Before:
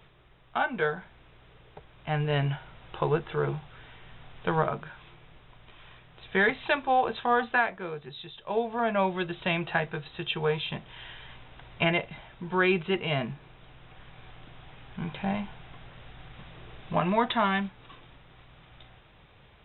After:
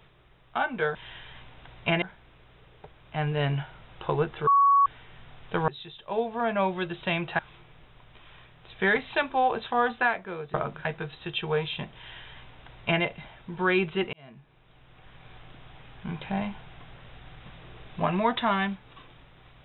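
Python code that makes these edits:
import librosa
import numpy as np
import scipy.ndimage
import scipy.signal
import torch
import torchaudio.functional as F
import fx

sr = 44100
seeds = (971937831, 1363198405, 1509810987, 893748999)

y = fx.edit(x, sr, fx.bleep(start_s=3.4, length_s=0.39, hz=1120.0, db=-16.0),
    fx.swap(start_s=4.61, length_s=0.31, other_s=8.07, other_length_s=1.71),
    fx.duplicate(start_s=10.89, length_s=1.07, to_s=0.95),
    fx.fade_in_span(start_s=13.06, length_s=1.17), tone=tone)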